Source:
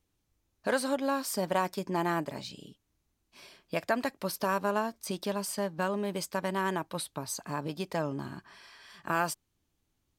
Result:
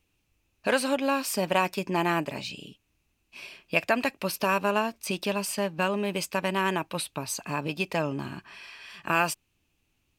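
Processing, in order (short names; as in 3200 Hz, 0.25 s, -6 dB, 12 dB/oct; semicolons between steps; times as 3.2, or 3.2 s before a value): bell 2600 Hz +14 dB 0.36 oct; gain +3.5 dB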